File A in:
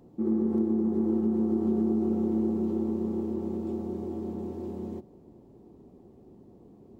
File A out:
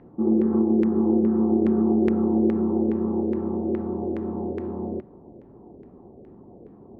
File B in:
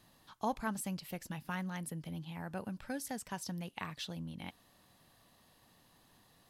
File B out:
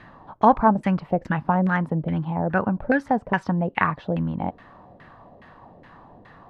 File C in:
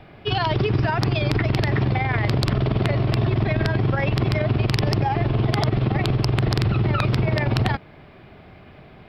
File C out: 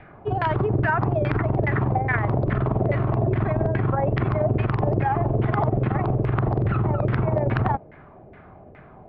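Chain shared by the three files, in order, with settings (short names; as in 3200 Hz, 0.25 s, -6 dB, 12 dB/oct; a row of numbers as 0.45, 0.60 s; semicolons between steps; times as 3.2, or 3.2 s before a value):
LFO low-pass saw down 2.4 Hz 490–2000 Hz; match loudness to -23 LUFS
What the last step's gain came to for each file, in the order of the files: +5.0, +17.5, -2.0 dB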